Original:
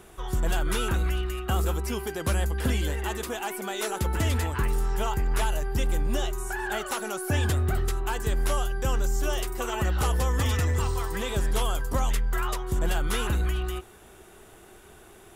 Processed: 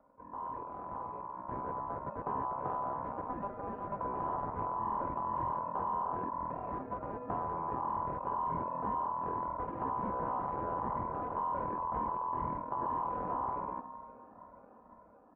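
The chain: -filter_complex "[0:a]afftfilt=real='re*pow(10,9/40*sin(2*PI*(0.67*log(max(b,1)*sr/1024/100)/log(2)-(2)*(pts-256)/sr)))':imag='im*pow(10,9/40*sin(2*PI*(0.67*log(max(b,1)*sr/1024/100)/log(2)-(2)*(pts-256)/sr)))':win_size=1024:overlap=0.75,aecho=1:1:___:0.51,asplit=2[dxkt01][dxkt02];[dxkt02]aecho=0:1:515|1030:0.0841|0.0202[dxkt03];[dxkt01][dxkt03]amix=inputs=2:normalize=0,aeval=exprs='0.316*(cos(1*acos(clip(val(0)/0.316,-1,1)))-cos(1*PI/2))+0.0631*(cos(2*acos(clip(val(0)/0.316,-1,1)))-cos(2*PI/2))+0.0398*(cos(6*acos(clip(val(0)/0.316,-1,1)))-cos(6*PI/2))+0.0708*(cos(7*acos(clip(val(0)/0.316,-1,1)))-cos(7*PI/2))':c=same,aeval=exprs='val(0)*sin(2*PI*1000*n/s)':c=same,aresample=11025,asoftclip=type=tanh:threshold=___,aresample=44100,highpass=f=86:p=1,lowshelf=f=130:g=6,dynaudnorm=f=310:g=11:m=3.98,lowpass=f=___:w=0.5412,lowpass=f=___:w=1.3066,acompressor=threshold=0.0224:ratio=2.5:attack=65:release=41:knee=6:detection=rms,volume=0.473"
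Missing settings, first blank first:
4, 0.0501, 1k, 1k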